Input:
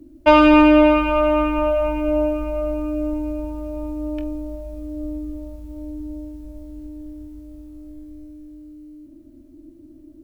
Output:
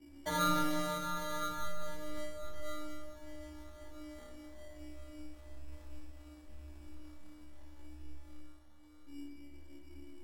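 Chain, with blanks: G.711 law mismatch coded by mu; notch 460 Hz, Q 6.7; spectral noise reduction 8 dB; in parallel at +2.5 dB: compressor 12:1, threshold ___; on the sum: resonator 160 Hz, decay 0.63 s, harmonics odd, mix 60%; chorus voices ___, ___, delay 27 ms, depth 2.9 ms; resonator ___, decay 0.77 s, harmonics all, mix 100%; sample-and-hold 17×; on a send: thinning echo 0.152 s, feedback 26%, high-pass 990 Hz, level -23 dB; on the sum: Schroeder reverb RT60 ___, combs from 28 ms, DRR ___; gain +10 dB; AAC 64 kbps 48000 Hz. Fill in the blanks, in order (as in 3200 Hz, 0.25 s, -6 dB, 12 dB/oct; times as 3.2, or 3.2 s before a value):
-35 dBFS, 4, 0.49 Hz, 71 Hz, 1.7 s, 6 dB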